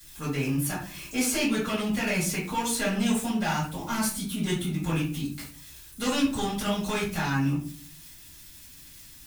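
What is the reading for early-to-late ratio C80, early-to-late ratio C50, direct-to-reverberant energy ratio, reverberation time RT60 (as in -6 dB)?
11.0 dB, 5.0 dB, -9.0 dB, 0.45 s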